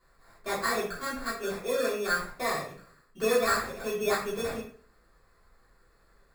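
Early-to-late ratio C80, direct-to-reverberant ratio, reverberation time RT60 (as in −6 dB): 8.5 dB, −8.5 dB, 0.45 s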